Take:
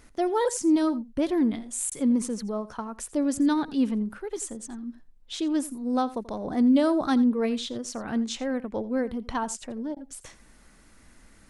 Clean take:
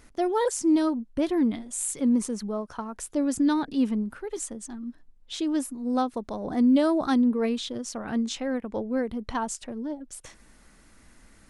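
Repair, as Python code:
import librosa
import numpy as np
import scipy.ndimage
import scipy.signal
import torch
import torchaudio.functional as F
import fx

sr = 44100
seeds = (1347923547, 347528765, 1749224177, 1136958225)

y = fx.fix_interpolate(x, sr, at_s=(1.9, 9.95), length_ms=14.0)
y = fx.fix_echo_inverse(y, sr, delay_ms=85, level_db=-18.0)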